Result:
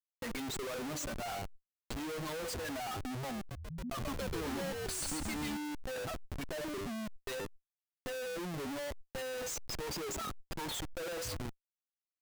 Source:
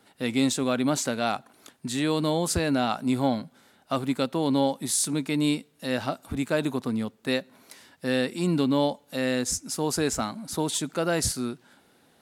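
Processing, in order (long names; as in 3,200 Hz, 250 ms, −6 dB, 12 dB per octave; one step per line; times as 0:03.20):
spectral dynamics exaggerated over time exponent 3
noise reduction from a noise print of the clip's start 10 dB
low-pass filter 8,600 Hz 24 dB per octave
notch filter 5,400 Hz, Q 24
hum removal 99.56 Hz, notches 30
dynamic equaliser 510 Hz, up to +5 dB, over −46 dBFS, Q 4.5
downward compressor 2.5 to 1, threshold −30 dBFS, peak gain reduction 6 dB
comparator with hysteresis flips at −50 dBFS
0:03.37–0:05.57: echo with shifted repeats 137 ms, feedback 39%, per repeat −84 Hz, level −3 dB
background raised ahead of every attack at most 22 dB per second
level −2 dB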